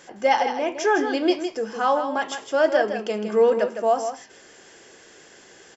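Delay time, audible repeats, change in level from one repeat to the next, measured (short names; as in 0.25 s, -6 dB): 0.16 s, 1, no steady repeat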